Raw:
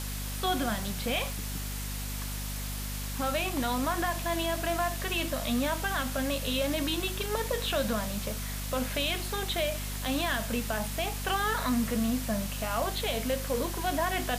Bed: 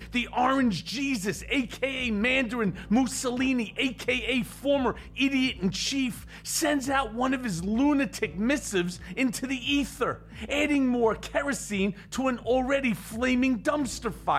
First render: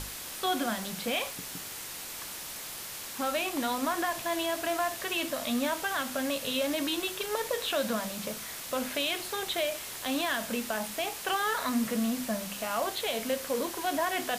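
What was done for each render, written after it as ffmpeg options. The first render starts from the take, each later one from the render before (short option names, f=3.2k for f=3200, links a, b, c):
-af "bandreject=f=50:t=h:w=6,bandreject=f=100:t=h:w=6,bandreject=f=150:t=h:w=6,bandreject=f=200:t=h:w=6,bandreject=f=250:t=h:w=6"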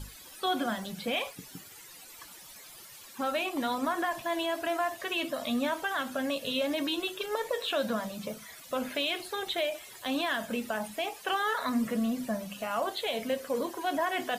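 -af "afftdn=nr=15:nf=-41"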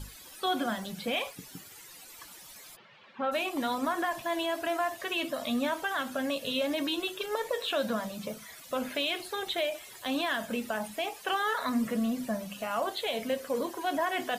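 -filter_complex "[0:a]asplit=3[a][b][c];[a]afade=t=out:st=2.75:d=0.02[d];[b]highpass=f=120:w=0.5412,highpass=f=120:w=1.3066,equalizer=f=200:t=q:w=4:g=4,equalizer=f=310:t=q:w=4:g=-7,equalizer=f=550:t=q:w=4:g=3,lowpass=f=3.1k:w=0.5412,lowpass=f=3.1k:w=1.3066,afade=t=in:st=2.75:d=0.02,afade=t=out:st=3.31:d=0.02[e];[c]afade=t=in:st=3.31:d=0.02[f];[d][e][f]amix=inputs=3:normalize=0"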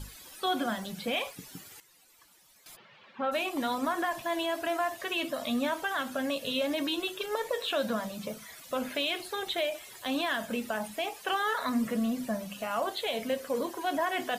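-filter_complex "[0:a]asplit=3[a][b][c];[a]atrim=end=1.802[d];[b]atrim=start=1.798:end=2.662,asetpts=PTS-STARTPTS,volume=-12dB[e];[c]atrim=start=2.658[f];[d][e]acrossfade=d=0.004:c1=hsin:c2=hsin[g];[g][f]acrossfade=d=0.004:c1=hsin:c2=hsin"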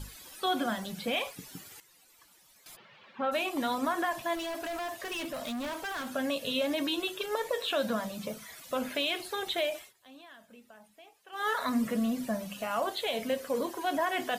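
-filter_complex "[0:a]asettb=1/sr,asplit=3[a][b][c];[a]atrim=end=4.354[d];[b]atrim=start=4.35:end=6.14,asetpts=PTS-STARTPTS,afade=t=in:d=0.004:c=qsin,afade=t=out:st=1.786:d=0.004:c=qsin,volume=33.5dB,asoftclip=hard,volume=-33.5dB[e];[c]atrim=start=6.136[f];[d][e]acrossfade=d=0.004:c1=hsin:c2=qsin[g];[g][f]acrossfade=d=0.004:c1=qsin:c2=hsin,asplit=3[h][i][j];[h]atrim=end=9.93,asetpts=PTS-STARTPTS,afade=t=out:st=9.78:d=0.15:silence=0.0841395[k];[i]atrim=start=9.93:end=11.32,asetpts=PTS-STARTPTS,volume=-21.5dB[l];[j]atrim=start=11.32,asetpts=PTS-STARTPTS,afade=t=in:d=0.15:silence=0.0841395[m];[k][l][m]concat=n=3:v=0:a=1"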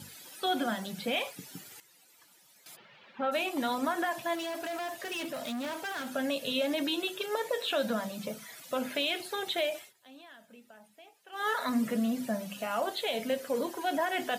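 -af "highpass=f=110:w=0.5412,highpass=f=110:w=1.3066,bandreject=f=1.1k:w=11"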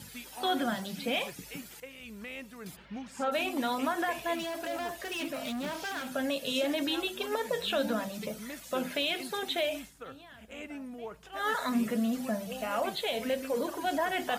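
-filter_complex "[1:a]volume=-18dB[a];[0:a][a]amix=inputs=2:normalize=0"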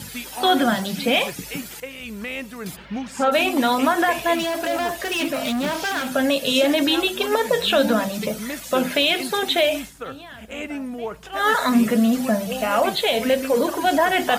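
-af "volume=12dB"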